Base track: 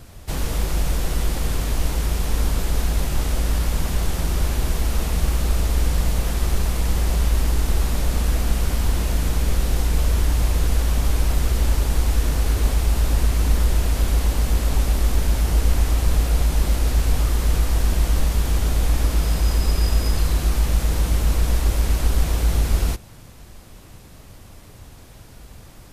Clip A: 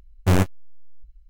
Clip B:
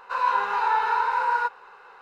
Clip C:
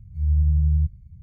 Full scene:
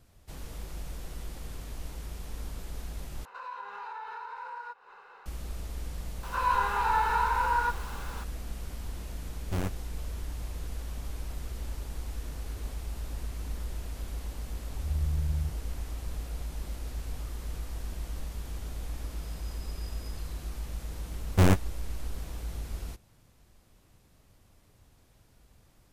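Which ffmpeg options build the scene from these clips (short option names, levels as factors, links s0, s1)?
-filter_complex "[2:a]asplit=2[s0][s1];[1:a]asplit=2[s2][s3];[0:a]volume=0.126[s4];[s0]acompressor=threshold=0.02:ratio=4:attack=0.32:release=340:knee=1:detection=peak[s5];[s1]aeval=exprs='val(0)+0.5*0.0141*sgn(val(0))':c=same[s6];[s3]aeval=exprs='val(0)+0.5*0.015*sgn(val(0))':c=same[s7];[s4]asplit=2[s8][s9];[s8]atrim=end=3.254[s10];[s5]atrim=end=2.01,asetpts=PTS-STARTPTS,volume=0.631[s11];[s9]atrim=start=5.256[s12];[s6]atrim=end=2.01,asetpts=PTS-STARTPTS,volume=0.596,afade=t=in:d=0.004:c=hsin,afade=t=out:st=2.006:d=0.004:c=hsin,adelay=6230[s13];[s2]atrim=end=1.29,asetpts=PTS-STARTPTS,volume=0.2,afade=t=in:d=0.004:c=hsin,afade=t=out:st=1.286:d=0.004:c=hsin,adelay=9250[s14];[3:a]atrim=end=1.22,asetpts=PTS-STARTPTS,volume=0.282,afade=t=in:d=0.004:c=hsin,afade=t=out:st=1.216:d=0.004:c=hsin,adelay=14630[s15];[s7]atrim=end=1.29,asetpts=PTS-STARTPTS,volume=0.668,afade=t=in:d=0.004:c=hsin,afade=t=out:st=1.286:d=0.004:c=hsin,adelay=21110[s16];[s10][s11]acrossfade=d=0.004:c1=hsin:c2=hsin[s17];[s17][s12]acrossfade=d=0.004:c1=hsin:c2=hsin[s18];[s18][s13][s14][s15][s16]amix=inputs=5:normalize=0"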